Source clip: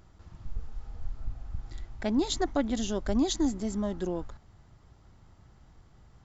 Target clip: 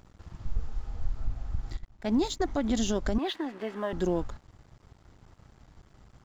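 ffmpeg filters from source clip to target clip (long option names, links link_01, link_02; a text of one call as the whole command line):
ffmpeg -i in.wav -filter_complex "[0:a]alimiter=limit=-23.5dB:level=0:latency=1:release=78,asettb=1/sr,asplit=3[link_01][link_02][link_03];[link_01]atrim=end=1.774[link_04];[link_02]atrim=start=1.77:end=2.48,asetpts=PTS-STARTPTS,afade=type=in:duration=0.004:curve=qsin,afade=type=out:start_time=0.706:duration=0.004:curve=qsin,agate=range=-14dB:threshold=-33dB:ratio=16:detection=peak[link_05];[link_03]atrim=start=2.476[link_06];[link_04][link_05]acrossfade=duration=0.004:curve1=hsin:curve2=qsin[link_07];[link_07][link_06]acrossfade=duration=0.004:curve1=qsin:curve2=hsin,asettb=1/sr,asplit=3[link_08][link_09][link_10];[link_08]atrim=end=3.184[link_11];[link_09]atrim=start=3.18:end=3.93,asetpts=PTS-STARTPTS,afade=type=in:duration=0.004:curve=qsin,afade=type=out:start_time=0.746:duration=0.004:curve=qsin,highpass=440,equalizer=frequency=480:width_type=q:width=4:gain=4,equalizer=frequency=1100:width_type=q:width=4:gain=4,equalizer=frequency=1700:width_type=q:width=4:gain=9,equalizer=frequency=2700:width_type=q:width=4:gain=8,lowpass=frequency=3300:width=0.5412,lowpass=frequency=3300:width=1.3066[link_12];[link_10]atrim=start=3.926[link_13];[link_11][link_12]acrossfade=duration=0.004:curve1=hsin:curve2=qsin[link_14];[link_14][link_13]acrossfade=duration=0.004:curve1=qsin:curve2=hsin,aeval=exprs='sgn(val(0))*max(abs(val(0))-0.00106,0)':channel_layout=same,volume=5.5dB" out.wav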